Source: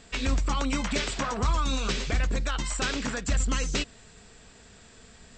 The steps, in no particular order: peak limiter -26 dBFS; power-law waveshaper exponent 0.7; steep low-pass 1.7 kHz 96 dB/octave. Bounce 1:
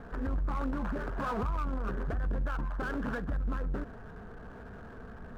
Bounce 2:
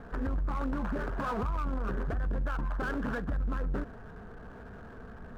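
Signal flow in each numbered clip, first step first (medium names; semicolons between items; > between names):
peak limiter > steep low-pass > power-law waveshaper; steep low-pass > peak limiter > power-law waveshaper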